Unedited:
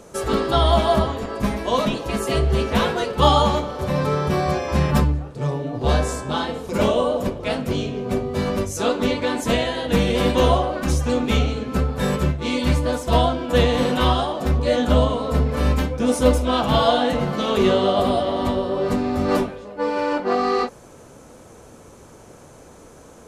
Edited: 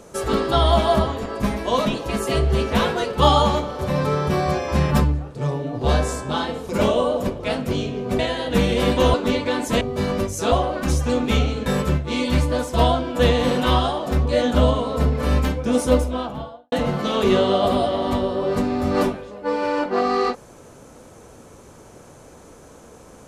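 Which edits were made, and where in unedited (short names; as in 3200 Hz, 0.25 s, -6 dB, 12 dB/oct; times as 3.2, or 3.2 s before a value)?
8.19–8.9 swap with 9.57–10.52
11.66–12 cut
16.07–17.06 studio fade out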